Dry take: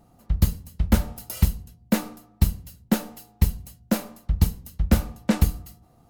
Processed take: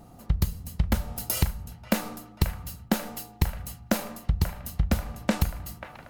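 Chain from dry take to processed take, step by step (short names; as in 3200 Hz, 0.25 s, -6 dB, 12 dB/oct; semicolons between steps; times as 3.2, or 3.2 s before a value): dynamic EQ 290 Hz, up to -7 dB, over -37 dBFS, Q 1.4; compressor 12:1, threshold -27 dBFS, peak gain reduction 15.5 dB; band-limited delay 0.537 s, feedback 66%, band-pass 1300 Hz, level -9.5 dB; gain +7 dB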